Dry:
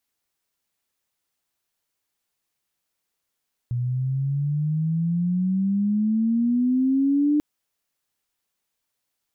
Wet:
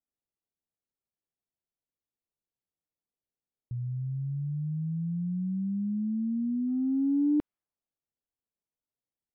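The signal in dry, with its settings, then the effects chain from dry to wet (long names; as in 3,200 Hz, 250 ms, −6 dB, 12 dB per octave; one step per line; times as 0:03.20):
glide logarithmic 120 Hz → 300 Hz −22 dBFS → −16.5 dBFS 3.69 s
low-pass that shuts in the quiet parts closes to 610 Hz
noise gate −20 dBFS, range −8 dB
high-frequency loss of the air 390 metres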